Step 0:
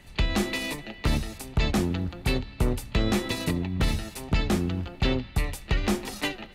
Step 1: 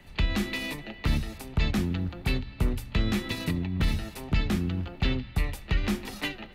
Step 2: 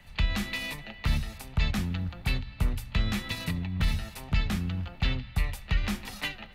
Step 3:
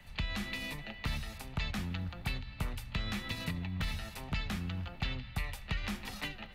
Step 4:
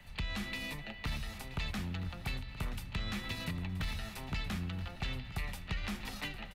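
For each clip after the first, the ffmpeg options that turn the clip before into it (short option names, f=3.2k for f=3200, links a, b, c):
-filter_complex "[0:a]equalizer=f=8k:w=0.7:g=-7.5,bandreject=f=60:t=h:w=6,bandreject=f=120:t=h:w=6,acrossover=split=280|1300[a][b][c];[b]acompressor=threshold=-40dB:ratio=6[d];[a][d][c]amix=inputs=3:normalize=0"
-af "equalizer=f=340:t=o:w=1:g=-12"
-filter_complex "[0:a]acrossover=split=490|4700[a][b][c];[a]acompressor=threshold=-33dB:ratio=4[d];[b]acompressor=threshold=-37dB:ratio=4[e];[c]acompressor=threshold=-50dB:ratio=4[f];[d][e][f]amix=inputs=3:normalize=0,volume=-1.5dB"
-af "asoftclip=type=tanh:threshold=-28dB,aecho=1:1:977|1954|2931:0.2|0.0638|0.0204"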